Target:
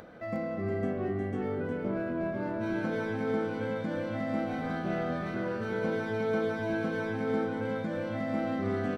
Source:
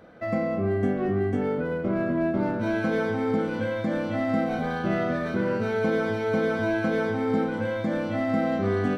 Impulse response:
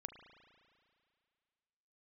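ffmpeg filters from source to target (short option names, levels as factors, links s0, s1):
-af "acompressor=mode=upward:threshold=0.02:ratio=2.5,aecho=1:1:359:0.596,volume=0.422"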